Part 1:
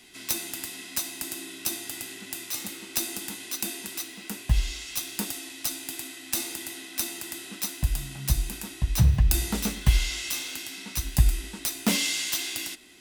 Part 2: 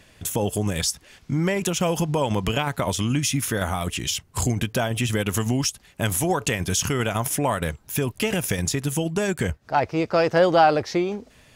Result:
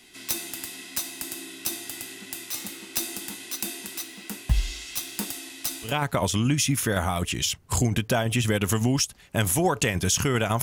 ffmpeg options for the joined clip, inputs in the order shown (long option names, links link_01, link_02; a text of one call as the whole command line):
ffmpeg -i cue0.wav -i cue1.wav -filter_complex "[0:a]apad=whole_dur=10.62,atrim=end=10.62,atrim=end=5.98,asetpts=PTS-STARTPTS[link_01];[1:a]atrim=start=2.47:end=7.27,asetpts=PTS-STARTPTS[link_02];[link_01][link_02]acrossfade=duration=0.16:curve1=tri:curve2=tri" out.wav